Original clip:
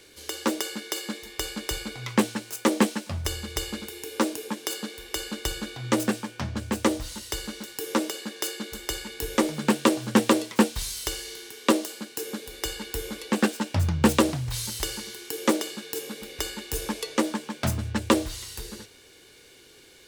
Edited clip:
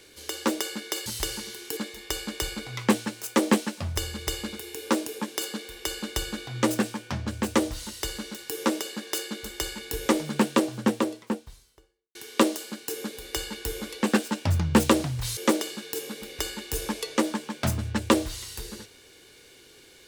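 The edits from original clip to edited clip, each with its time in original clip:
9.38–11.44 s: studio fade out
14.66–15.37 s: move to 1.06 s

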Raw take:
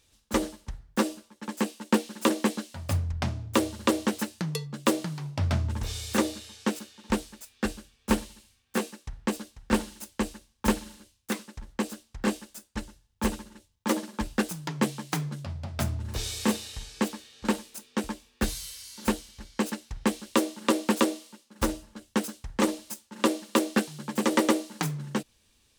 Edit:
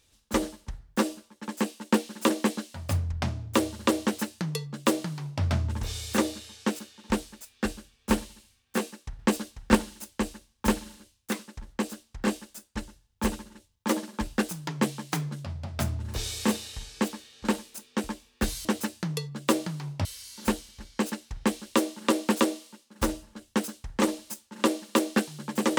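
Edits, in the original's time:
4.03–5.43 s: copy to 18.65 s
9.19–9.75 s: gain +4.5 dB

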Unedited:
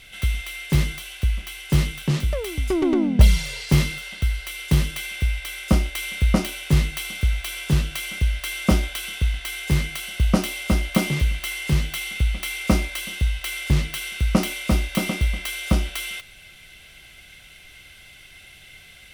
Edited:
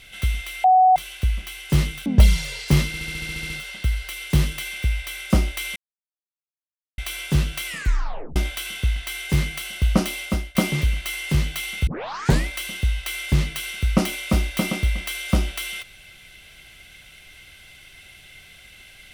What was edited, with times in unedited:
0.64–0.96 s: bleep 745 Hz -10.5 dBFS
2.06–3.07 s: delete
3.88 s: stutter 0.07 s, 10 plays
6.14–7.36 s: mute
8.05 s: tape stop 0.69 s
10.59–10.93 s: fade out, to -19 dB
12.25 s: tape start 0.60 s

